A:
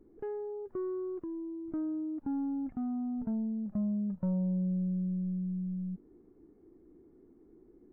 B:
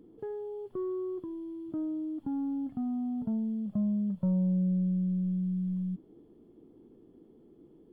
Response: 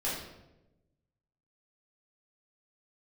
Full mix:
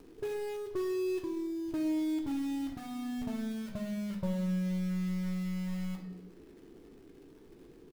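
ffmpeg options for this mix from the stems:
-filter_complex "[0:a]aecho=1:1:1.9:0.63,volume=0dB[link_01];[1:a]alimiter=level_in=8.5dB:limit=-24dB:level=0:latency=1:release=202,volume=-8.5dB,acompressor=mode=upward:threshold=-51dB:ratio=2.5,acrusher=bits=2:mode=log:mix=0:aa=0.000001,adelay=2.2,volume=-7.5dB,asplit=2[link_02][link_03];[link_03]volume=-3.5dB[link_04];[2:a]atrim=start_sample=2205[link_05];[link_04][link_05]afir=irnorm=-1:irlink=0[link_06];[link_01][link_02][link_06]amix=inputs=3:normalize=0"

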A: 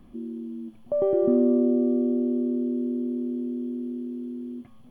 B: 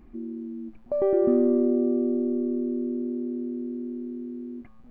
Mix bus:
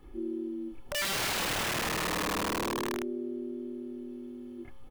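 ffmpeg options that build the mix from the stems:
ffmpeg -i stem1.wav -i stem2.wav -filter_complex "[0:a]lowshelf=frequency=200:gain=-8.5,acompressor=threshold=-33dB:ratio=8,volume=-1.5dB[link_01];[1:a]bandreject=frequency=60:width_type=h:width=6,bandreject=frequency=120:width_type=h:width=6,bandreject=frequency=180:width_type=h:width=6,bandreject=frequency=240:width_type=h:width=6,bandreject=frequency=300:width_type=h:width=6,bandreject=frequency=360:width_type=h:width=6,bandreject=frequency=420:width_type=h:width=6,adelay=30,volume=-1dB[link_02];[link_01][link_02]amix=inputs=2:normalize=0,aecho=1:1:2.3:0.74,aeval=exprs='(mod(21.1*val(0)+1,2)-1)/21.1':channel_layout=same" out.wav

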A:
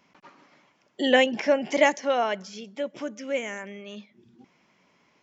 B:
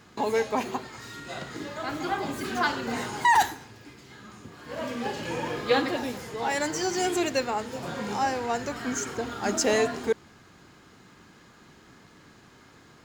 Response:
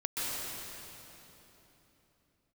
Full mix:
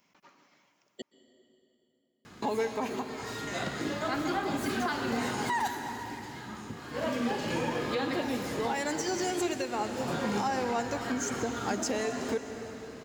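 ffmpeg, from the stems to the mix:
-filter_complex "[0:a]aemphasis=mode=production:type=50fm,volume=-8.5dB,asplit=3[link_01][link_02][link_03];[link_01]atrim=end=1.02,asetpts=PTS-STARTPTS,afade=type=out:start_time=1.016:duration=0.004:curve=hsin[link_04];[link_02]atrim=start=1.02:end=3.47,asetpts=PTS-STARTPTS,volume=0[link_05];[link_03]atrim=start=3.47,asetpts=PTS-STARTPTS,afade=type=in:duration=0.004:curve=hsin[link_06];[link_04][link_05][link_06]concat=n=3:v=0:a=1,asplit=2[link_07][link_08];[link_08]volume=-19dB[link_09];[1:a]equalizer=frequency=230:width=1.5:gain=2.5,alimiter=limit=-22dB:level=0:latency=1:release=227,adelay=2250,volume=0.5dB,asplit=2[link_10][link_11];[link_11]volume=-13dB[link_12];[2:a]atrim=start_sample=2205[link_13];[link_09][link_12]amix=inputs=2:normalize=0[link_14];[link_14][link_13]afir=irnorm=-1:irlink=0[link_15];[link_07][link_10][link_15]amix=inputs=3:normalize=0,alimiter=limit=-21dB:level=0:latency=1:release=335"

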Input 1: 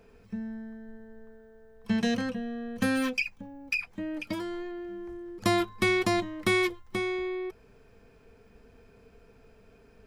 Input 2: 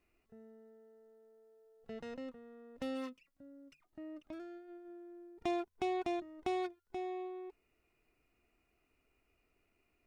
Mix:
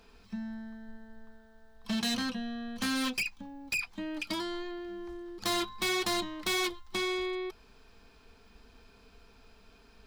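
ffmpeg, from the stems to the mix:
ffmpeg -i stem1.wav -i stem2.wav -filter_complex "[0:a]equalizer=frequency=125:width_type=o:width=1:gain=-12,equalizer=frequency=500:width_type=o:width=1:gain=-10,equalizer=frequency=1000:width_type=o:width=1:gain=4,equalizer=frequency=2000:width_type=o:width=1:gain=-4,equalizer=frequency=4000:width_type=o:width=1:gain=10,volume=2dB[link_01];[1:a]volume=-2.5dB[link_02];[link_01][link_02]amix=inputs=2:normalize=0,volume=28dB,asoftclip=hard,volume=-28dB" out.wav

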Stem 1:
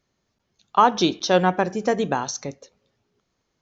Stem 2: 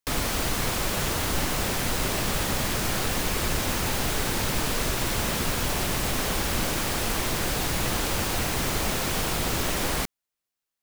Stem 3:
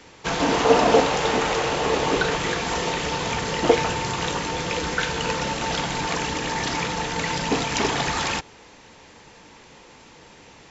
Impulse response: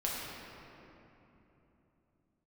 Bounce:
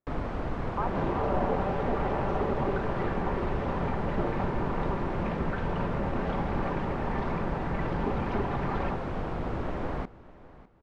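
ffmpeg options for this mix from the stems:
-filter_complex "[0:a]lowshelf=frequency=170:gain=-11.5,volume=-10.5dB[link_01];[1:a]volume=-3dB,asplit=2[link_02][link_03];[link_03]volume=-19dB[link_04];[2:a]afwtdn=0.0251,aecho=1:1:5.1:0.69,adelay=550,volume=-5.5dB[link_05];[link_01][link_05]amix=inputs=2:normalize=0,bandreject=frequency=460:width=14,alimiter=limit=-19dB:level=0:latency=1:release=148,volume=0dB[link_06];[link_04]aecho=0:1:602|1204|1806|2408:1|0.25|0.0625|0.0156[link_07];[link_02][link_06][link_07]amix=inputs=3:normalize=0,lowpass=1100"

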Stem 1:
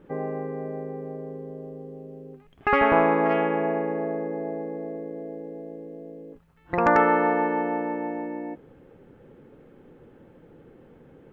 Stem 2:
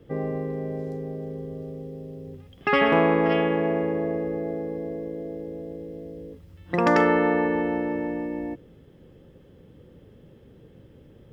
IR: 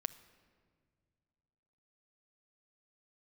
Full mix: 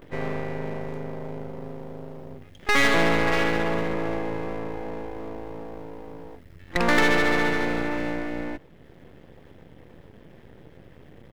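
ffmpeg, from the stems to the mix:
-filter_complex "[0:a]volume=-15dB[link_01];[1:a]equalizer=frequency=1900:width=2.3:gain=10,aeval=exprs='0.668*(cos(1*acos(clip(val(0)/0.668,-1,1)))-cos(1*PI/2))+0.075*(cos(5*acos(clip(val(0)/0.668,-1,1)))-cos(5*PI/2))':channel_layout=same,adelay=20,volume=-1dB[link_02];[link_01][link_02]amix=inputs=2:normalize=0,aeval=exprs='max(val(0),0)':channel_layout=same,acompressor=mode=upward:threshold=-40dB:ratio=2.5"

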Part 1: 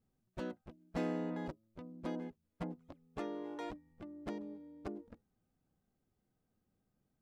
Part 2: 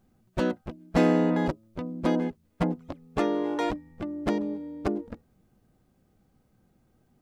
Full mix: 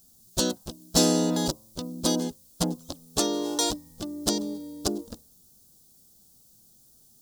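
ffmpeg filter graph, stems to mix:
ffmpeg -i stem1.wav -i stem2.wav -filter_complex "[0:a]bandreject=frequency=65.74:width_type=h:width=4,bandreject=frequency=131.48:width_type=h:width=4,bandreject=frequency=197.22:width_type=h:width=4,bandreject=frequency=262.96:width_type=h:width=4,bandreject=frequency=328.7:width_type=h:width=4,bandreject=frequency=394.44:width_type=h:width=4,bandreject=frequency=460.18:width_type=h:width=4,bandreject=frequency=525.92:width_type=h:width=4,bandreject=frequency=591.66:width_type=h:width=4,bandreject=frequency=657.4:width_type=h:width=4,bandreject=frequency=723.14:width_type=h:width=4,bandreject=frequency=788.88:width_type=h:width=4,bandreject=frequency=854.62:width_type=h:width=4,bandreject=frequency=920.36:width_type=h:width=4,bandreject=frequency=986.1:width_type=h:width=4,bandreject=frequency=1051.84:width_type=h:width=4,bandreject=frequency=1117.58:width_type=h:width=4,bandreject=frequency=1183.32:width_type=h:width=4,volume=2dB[link_01];[1:a]equalizer=frequency=2500:width_type=o:width=0.86:gain=-13,volume=-3.5dB[link_02];[link_01][link_02]amix=inputs=2:normalize=0,aexciter=amount=9.6:drive=8.8:freq=3300" out.wav

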